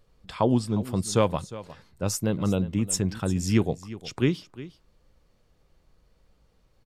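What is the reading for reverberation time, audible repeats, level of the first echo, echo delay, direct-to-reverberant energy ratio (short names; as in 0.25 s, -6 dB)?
none, 1, -16.5 dB, 0.357 s, none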